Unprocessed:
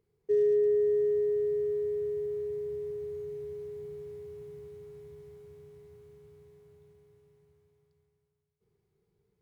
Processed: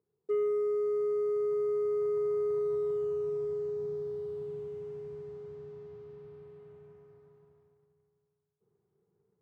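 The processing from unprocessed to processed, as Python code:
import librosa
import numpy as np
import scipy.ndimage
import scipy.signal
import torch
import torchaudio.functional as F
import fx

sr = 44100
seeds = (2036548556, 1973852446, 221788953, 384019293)

y = scipy.signal.sosfilt(scipy.signal.butter(4, 1500.0, 'lowpass', fs=sr, output='sos'), x)
y = fx.rider(y, sr, range_db=5, speed_s=0.5)
y = scipy.signal.sosfilt(scipy.signal.butter(2, 140.0, 'highpass', fs=sr, output='sos'), y)
y = fx.leveller(y, sr, passes=1)
y = F.gain(torch.from_numpy(y), -2.0).numpy()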